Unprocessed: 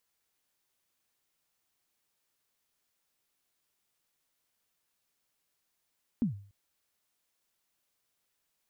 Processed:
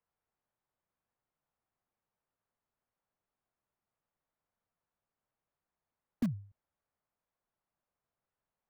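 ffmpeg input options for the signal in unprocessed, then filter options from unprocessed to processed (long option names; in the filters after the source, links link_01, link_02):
-f lavfi -i "aevalsrc='0.0794*pow(10,-3*t/0.46)*sin(2*PI*(260*0.118/log(100/260)*(exp(log(100/260)*min(t,0.118)/0.118)-1)+100*max(t-0.118,0)))':duration=0.29:sample_rate=44100"
-filter_complex "[0:a]lowpass=1100,acrossover=split=180|250|380[link_01][link_02][link_03][link_04];[link_03]acrusher=bits=6:mix=0:aa=0.000001[link_05];[link_01][link_02][link_05][link_04]amix=inputs=4:normalize=0"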